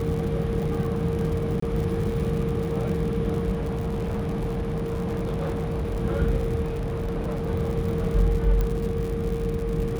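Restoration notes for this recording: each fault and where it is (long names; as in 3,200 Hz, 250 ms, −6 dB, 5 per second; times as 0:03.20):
surface crackle 110 per second −31 dBFS
whistle 460 Hz −29 dBFS
0:01.60–0:01.62: drop-out 24 ms
0:03.51–0:06.02: clipping −24 dBFS
0:06.62–0:07.50: clipping −24.5 dBFS
0:08.61: click −14 dBFS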